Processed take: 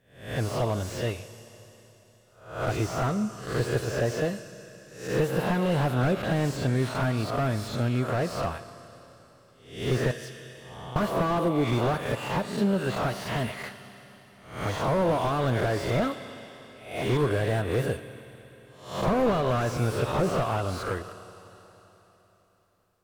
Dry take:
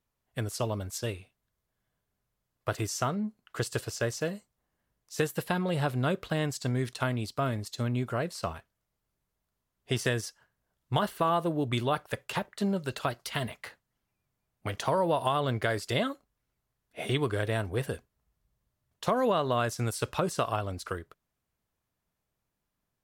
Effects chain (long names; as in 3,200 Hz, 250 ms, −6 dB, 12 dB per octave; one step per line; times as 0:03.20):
peak hold with a rise ahead of every peak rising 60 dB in 0.51 s
0:10.11–0:10.96: downward compressor 6 to 1, threshold −44 dBFS, peak gain reduction 20.5 dB
four-comb reverb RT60 3.7 s, combs from 27 ms, DRR 14.5 dB
slew-rate limiting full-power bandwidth 32 Hz
level +4 dB